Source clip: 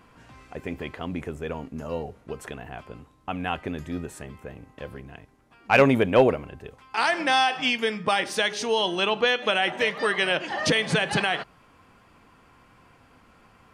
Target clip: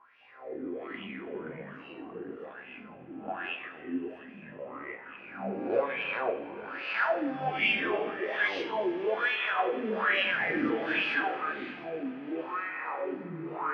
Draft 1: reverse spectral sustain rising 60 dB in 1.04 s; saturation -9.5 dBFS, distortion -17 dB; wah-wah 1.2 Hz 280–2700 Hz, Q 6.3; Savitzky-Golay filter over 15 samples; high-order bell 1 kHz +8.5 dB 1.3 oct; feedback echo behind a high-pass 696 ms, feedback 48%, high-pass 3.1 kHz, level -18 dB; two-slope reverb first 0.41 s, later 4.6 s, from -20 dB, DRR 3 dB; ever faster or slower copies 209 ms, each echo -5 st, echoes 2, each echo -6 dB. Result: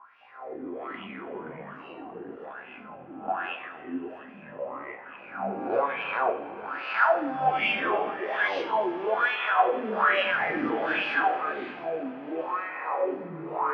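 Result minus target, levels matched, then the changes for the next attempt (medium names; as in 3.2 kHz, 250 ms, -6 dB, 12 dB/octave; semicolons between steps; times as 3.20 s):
1 kHz band +4.0 dB
remove: high-order bell 1 kHz +8.5 dB 1.3 oct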